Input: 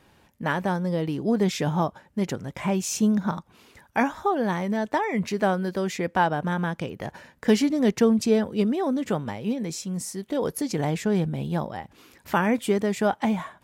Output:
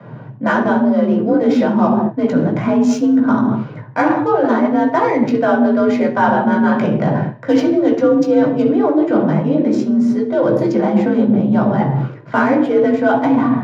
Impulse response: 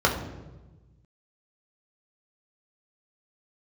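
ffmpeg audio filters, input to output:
-filter_complex "[0:a]adynamicsmooth=sensitivity=4:basefreq=1800,equalizer=frequency=77:width_type=o:width=0.4:gain=15[link_01];[1:a]atrim=start_sample=2205,afade=type=out:start_time=0.3:duration=0.01,atrim=end_sample=13671[link_02];[link_01][link_02]afir=irnorm=-1:irlink=0,afreqshift=52,areverse,acompressor=threshold=-18dB:ratio=4,areverse,volume=4.5dB"

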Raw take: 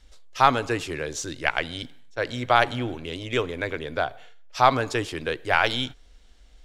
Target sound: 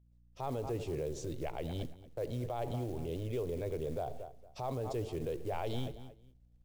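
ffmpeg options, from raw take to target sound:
ffmpeg -i in.wav -filter_complex "[0:a]agate=range=-18dB:threshold=-40dB:ratio=16:detection=peak,firequalizer=gain_entry='entry(180,0);entry(390,2);entry(1500,-26);entry(2400,-19)':delay=0.05:min_phase=1,asplit=2[link_01][link_02];[link_02]adelay=229,lowpass=frequency=3200:poles=1,volume=-17dB,asplit=2[link_03][link_04];[link_04]adelay=229,lowpass=frequency=3200:poles=1,volume=0.23[link_05];[link_01][link_03][link_05]amix=inputs=3:normalize=0,dynaudnorm=framelen=140:gausssize=7:maxgain=10dB,acrusher=bits=7:mode=log:mix=0:aa=0.000001,aeval=exprs='val(0)+0.00178*(sin(2*PI*60*n/s)+sin(2*PI*2*60*n/s)/2+sin(2*PI*3*60*n/s)/3+sin(2*PI*4*60*n/s)/4+sin(2*PI*5*60*n/s)/5)':channel_layout=same,equalizer=frequency=280:width=1.9:gain=-9.5,alimiter=limit=-20.5dB:level=0:latency=1:release=49,volume=-8dB" out.wav

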